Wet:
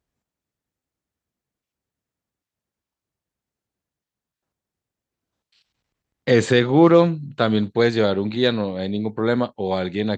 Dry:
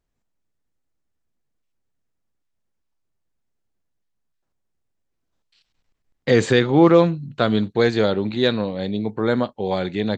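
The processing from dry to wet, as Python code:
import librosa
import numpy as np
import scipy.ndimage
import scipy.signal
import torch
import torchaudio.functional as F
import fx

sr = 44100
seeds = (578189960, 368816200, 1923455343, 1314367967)

y = scipy.signal.sosfilt(scipy.signal.butter(2, 53.0, 'highpass', fs=sr, output='sos'), x)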